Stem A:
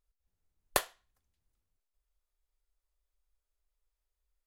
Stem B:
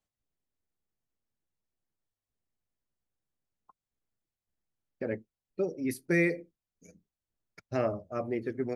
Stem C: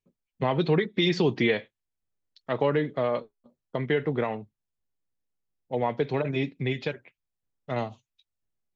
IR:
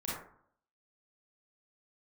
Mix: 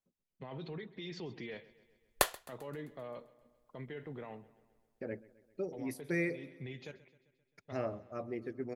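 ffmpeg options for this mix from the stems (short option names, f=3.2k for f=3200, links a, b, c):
-filter_complex "[0:a]adelay=1450,volume=0.5dB,asplit=2[a][b];[b]volume=-23dB[c];[1:a]volume=-7.5dB,asplit=3[d][e][f];[e]volume=-21dB[g];[2:a]alimiter=limit=-22dB:level=0:latency=1:release=28,volume=-14dB,asplit=2[h][i];[i]volume=-19dB[j];[f]apad=whole_len=386212[k];[h][k]sidechaincompress=threshold=-41dB:ratio=8:attack=16:release=252[l];[c][g][j]amix=inputs=3:normalize=0,aecho=0:1:131|262|393|524|655|786|917|1048|1179:1|0.57|0.325|0.185|0.106|0.0602|0.0343|0.0195|0.0111[m];[a][d][l][m]amix=inputs=4:normalize=0"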